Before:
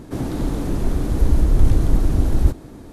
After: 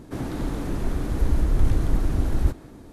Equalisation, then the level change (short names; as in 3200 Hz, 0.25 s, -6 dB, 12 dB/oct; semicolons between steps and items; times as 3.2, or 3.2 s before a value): dynamic EQ 1700 Hz, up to +5 dB, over -48 dBFS, Q 0.72; -5.5 dB